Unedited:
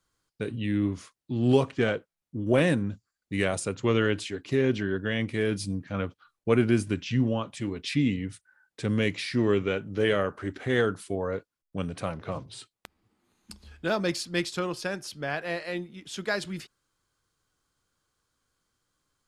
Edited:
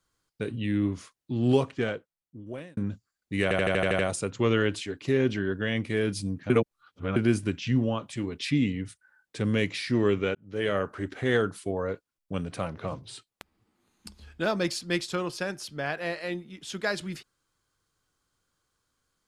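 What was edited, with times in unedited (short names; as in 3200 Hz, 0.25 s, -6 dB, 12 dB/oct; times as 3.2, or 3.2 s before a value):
1.38–2.77 fade out
3.43 stutter 0.08 s, 8 plays
5.94–6.6 reverse
9.79–10.25 fade in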